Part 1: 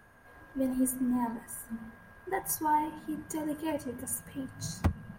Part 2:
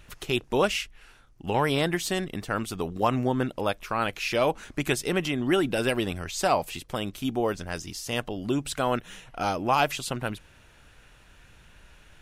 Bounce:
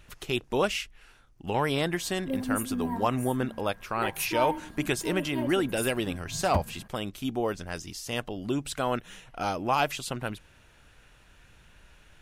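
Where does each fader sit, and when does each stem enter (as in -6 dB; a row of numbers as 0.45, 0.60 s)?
-1.5, -2.5 dB; 1.70, 0.00 s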